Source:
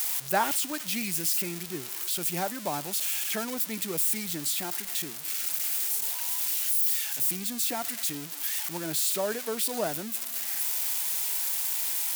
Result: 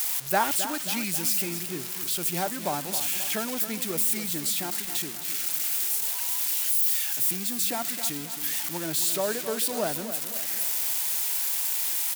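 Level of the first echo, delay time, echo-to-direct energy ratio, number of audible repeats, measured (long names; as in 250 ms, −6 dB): −11.0 dB, 267 ms, −9.5 dB, 4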